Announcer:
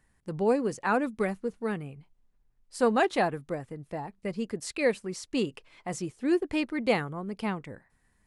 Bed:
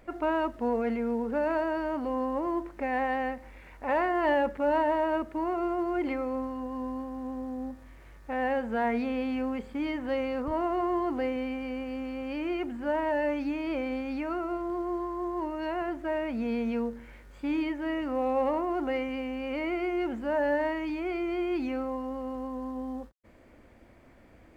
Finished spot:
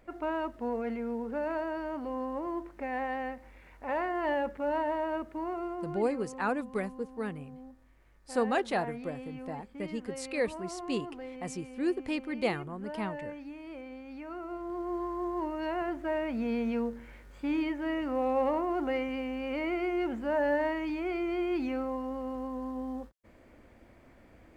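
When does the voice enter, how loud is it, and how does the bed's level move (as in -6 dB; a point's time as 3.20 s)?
5.55 s, -4.5 dB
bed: 5.52 s -5 dB
6.18 s -12.5 dB
13.99 s -12.5 dB
15.06 s -1 dB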